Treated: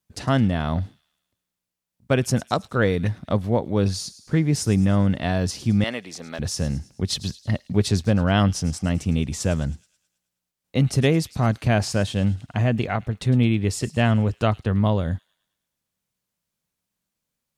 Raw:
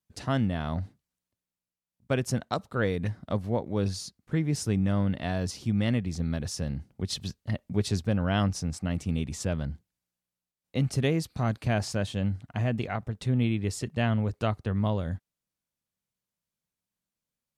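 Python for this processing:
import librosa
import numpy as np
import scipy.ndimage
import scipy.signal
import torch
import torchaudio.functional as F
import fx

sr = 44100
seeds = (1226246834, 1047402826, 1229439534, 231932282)

p1 = fx.highpass(x, sr, hz=510.0, slope=12, at=(5.84, 6.39))
p2 = p1 + fx.echo_wet_highpass(p1, sr, ms=107, feedback_pct=52, hz=3500.0, wet_db=-15.0, dry=0)
y = p2 * librosa.db_to_amplitude(7.0)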